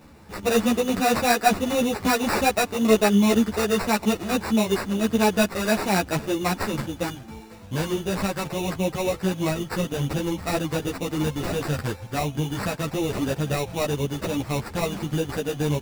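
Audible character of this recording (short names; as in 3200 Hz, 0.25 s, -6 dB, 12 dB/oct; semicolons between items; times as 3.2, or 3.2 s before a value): aliases and images of a low sample rate 3200 Hz, jitter 0%; a shimmering, thickened sound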